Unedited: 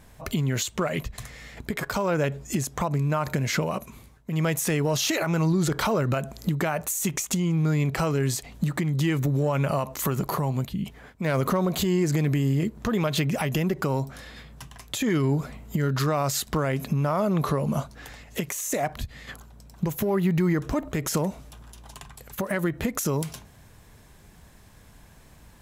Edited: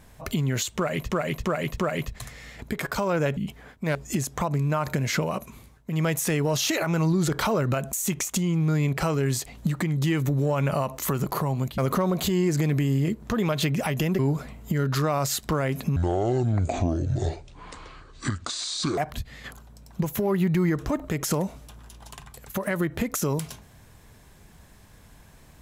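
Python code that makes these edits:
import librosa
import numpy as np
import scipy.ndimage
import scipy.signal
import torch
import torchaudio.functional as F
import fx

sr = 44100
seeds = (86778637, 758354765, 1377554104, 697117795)

y = fx.edit(x, sr, fx.repeat(start_s=0.76, length_s=0.34, count=4),
    fx.cut(start_s=6.33, length_s=0.57),
    fx.move(start_s=10.75, length_s=0.58, to_s=2.35),
    fx.cut(start_s=13.74, length_s=1.49),
    fx.speed_span(start_s=17.0, length_s=1.81, speed=0.6), tone=tone)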